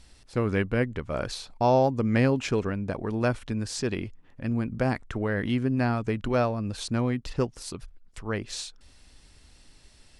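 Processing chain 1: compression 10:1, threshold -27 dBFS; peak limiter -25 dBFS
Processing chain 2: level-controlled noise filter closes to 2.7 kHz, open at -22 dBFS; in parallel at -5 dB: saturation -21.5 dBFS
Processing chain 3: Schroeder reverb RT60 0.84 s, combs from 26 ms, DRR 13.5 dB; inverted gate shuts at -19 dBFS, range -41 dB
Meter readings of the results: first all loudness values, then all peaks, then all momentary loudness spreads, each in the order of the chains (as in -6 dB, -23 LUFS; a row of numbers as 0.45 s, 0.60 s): -36.0 LUFS, -25.0 LUFS, -37.5 LUFS; -25.0 dBFS, -9.0 dBFS, -16.5 dBFS; 6 LU, 12 LU, 22 LU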